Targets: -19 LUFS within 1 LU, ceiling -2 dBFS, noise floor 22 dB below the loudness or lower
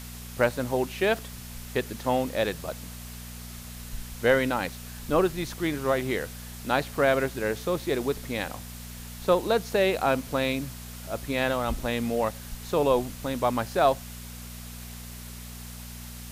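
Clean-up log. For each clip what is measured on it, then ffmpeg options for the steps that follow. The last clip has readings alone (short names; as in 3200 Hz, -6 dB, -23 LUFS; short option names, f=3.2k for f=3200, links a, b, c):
hum 60 Hz; harmonics up to 240 Hz; hum level -39 dBFS; noise floor -41 dBFS; noise floor target -49 dBFS; loudness -27.0 LUFS; peak -9.0 dBFS; loudness target -19.0 LUFS
-> -af "bandreject=f=60:t=h:w=4,bandreject=f=120:t=h:w=4,bandreject=f=180:t=h:w=4,bandreject=f=240:t=h:w=4"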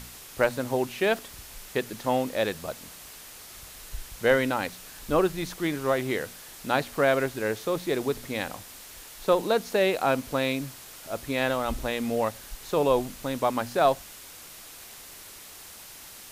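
hum none; noise floor -46 dBFS; noise floor target -50 dBFS
-> -af "afftdn=nr=6:nf=-46"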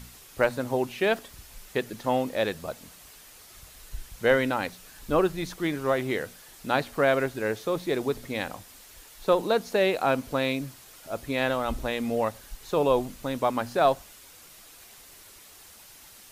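noise floor -51 dBFS; loudness -27.5 LUFS; peak -8.5 dBFS; loudness target -19.0 LUFS
-> -af "volume=8.5dB,alimiter=limit=-2dB:level=0:latency=1"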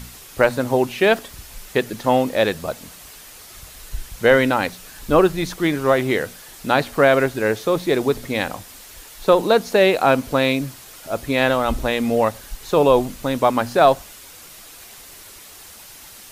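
loudness -19.0 LUFS; peak -2.0 dBFS; noise floor -42 dBFS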